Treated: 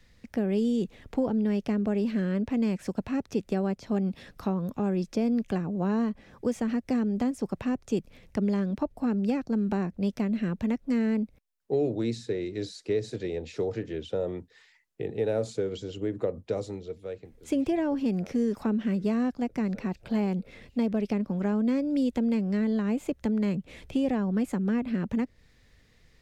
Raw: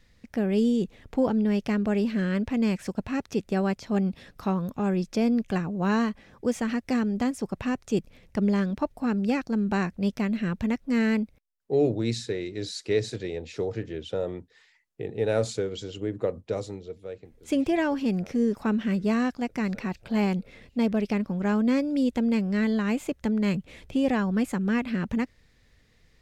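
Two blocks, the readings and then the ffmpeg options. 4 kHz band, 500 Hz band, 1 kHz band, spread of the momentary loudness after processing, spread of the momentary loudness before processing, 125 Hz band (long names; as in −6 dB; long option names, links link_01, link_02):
−6.0 dB, −2.0 dB, −4.5 dB, 7 LU, 9 LU, −2.0 dB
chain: -filter_complex "[0:a]acrossover=split=160|770[link_01][link_02][link_03];[link_01]acompressor=threshold=-42dB:ratio=4[link_04];[link_02]acompressor=threshold=-25dB:ratio=4[link_05];[link_03]acompressor=threshold=-45dB:ratio=4[link_06];[link_04][link_05][link_06]amix=inputs=3:normalize=0,volume=1dB"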